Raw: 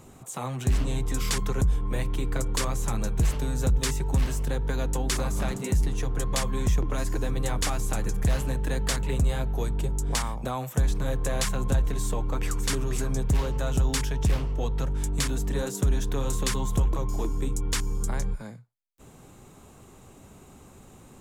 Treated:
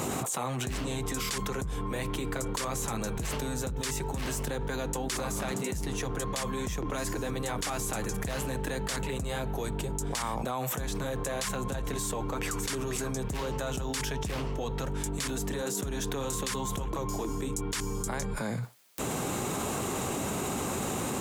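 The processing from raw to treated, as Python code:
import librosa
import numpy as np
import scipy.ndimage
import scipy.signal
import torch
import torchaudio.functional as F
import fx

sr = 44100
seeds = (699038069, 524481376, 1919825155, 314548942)

y = fx.highpass(x, sr, hz=240.0, slope=6)
y = fx.env_flatten(y, sr, amount_pct=100)
y = y * 10.0 ** (-7.0 / 20.0)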